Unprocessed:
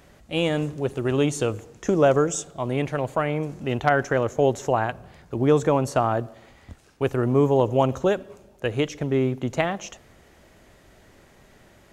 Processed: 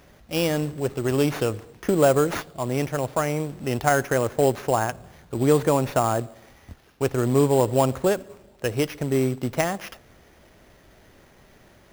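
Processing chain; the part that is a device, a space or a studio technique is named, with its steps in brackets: early companding sampler (sample-rate reducer 8100 Hz, jitter 0%; companded quantiser 6-bit)

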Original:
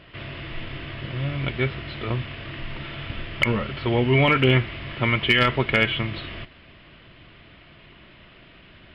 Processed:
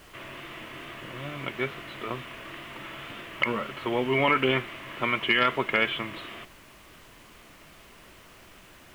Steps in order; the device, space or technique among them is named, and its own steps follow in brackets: horn gramophone (BPF 240–3900 Hz; bell 1100 Hz +5.5 dB 0.54 oct; wow and flutter; pink noise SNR 23 dB); gain -4 dB

